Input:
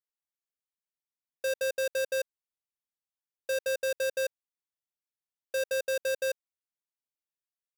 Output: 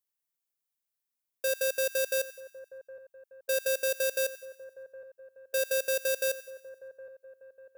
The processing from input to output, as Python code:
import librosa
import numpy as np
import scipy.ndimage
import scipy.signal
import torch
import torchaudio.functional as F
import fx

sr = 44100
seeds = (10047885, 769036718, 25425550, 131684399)

p1 = fx.high_shelf(x, sr, hz=8400.0, db=11.5)
y = p1 + fx.echo_split(p1, sr, split_hz=1400.0, low_ms=765, high_ms=94, feedback_pct=52, wet_db=-16.0, dry=0)